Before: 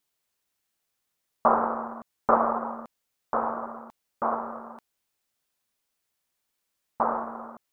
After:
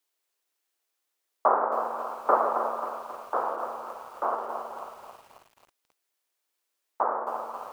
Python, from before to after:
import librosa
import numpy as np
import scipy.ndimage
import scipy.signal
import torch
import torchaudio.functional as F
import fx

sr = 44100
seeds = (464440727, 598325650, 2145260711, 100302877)

p1 = scipy.signal.sosfilt(scipy.signal.butter(8, 290.0, 'highpass', fs=sr, output='sos'), x)
p2 = p1 + fx.echo_stepped(p1, sr, ms=162, hz=450.0, octaves=0.7, feedback_pct=70, wet_db=-9, dry=0)
p3 = fx.echo_crushed(p2, sr, ms=269, feedback_pct=55, bits=8, wet_db=-9.0)
y = F.gain(torch.from_numpy(p3), -1.0).numpy()